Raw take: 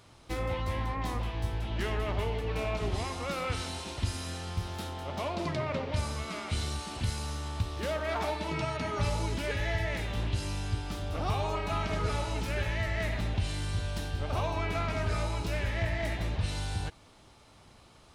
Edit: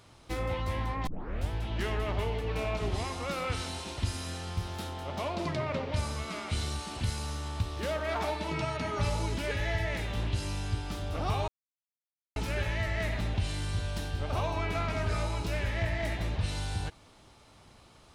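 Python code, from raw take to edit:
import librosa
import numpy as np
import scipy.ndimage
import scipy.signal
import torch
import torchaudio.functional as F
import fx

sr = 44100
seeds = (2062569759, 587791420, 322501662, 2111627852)

y = fx.edit(x, sr, fx.tape_start(start_s=1.07, length_s=0.43),
    fx.silence(start_s=11.48, length_s=0.88), tone=tone)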